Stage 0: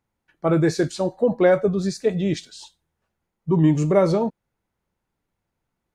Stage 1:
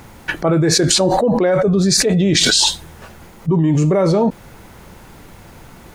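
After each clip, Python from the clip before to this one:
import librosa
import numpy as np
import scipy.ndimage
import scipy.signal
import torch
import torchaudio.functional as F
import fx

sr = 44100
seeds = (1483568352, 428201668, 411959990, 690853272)

y = fx.env_flatten(x, sr, amount_pct=100)
y = y * librosa.db_to_amplitude(-1.0)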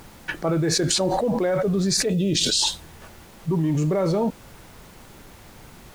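y = fx.dmg_noise_colour(x, sr, seeds[0], colour='pink', level_db=-42.0)
y = fx.spec_box(y, sr, start_s=2.1, length_s=0.52, low_hz=640.0, high_hz=2400.0, gain_db=-11)
y = y * librosa.db_to_amplitude(-7.5)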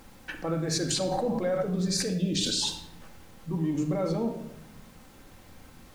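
y = fx.room_shoebox(x, sr, seeds[1], volume_m3=3300.0, walls='furnished', distance_m=2.1)
y = y * librosa.db_to_amplitude(-8.5)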